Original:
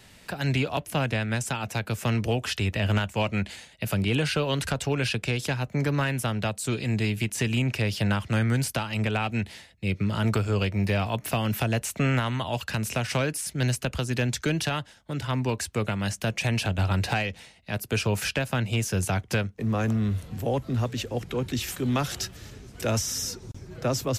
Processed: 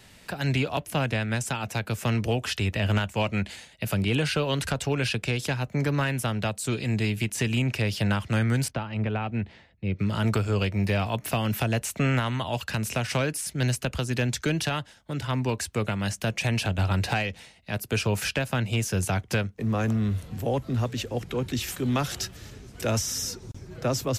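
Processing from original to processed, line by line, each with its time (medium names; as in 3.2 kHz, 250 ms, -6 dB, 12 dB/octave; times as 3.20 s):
8.68–9.99 s: tape spacing loss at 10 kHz 30 dB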